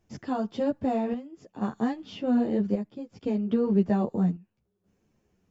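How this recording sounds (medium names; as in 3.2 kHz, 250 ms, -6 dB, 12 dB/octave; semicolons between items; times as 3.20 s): chopped level 0.62 Hz, depth 60%, duty 70%; a shimmering, thickened sound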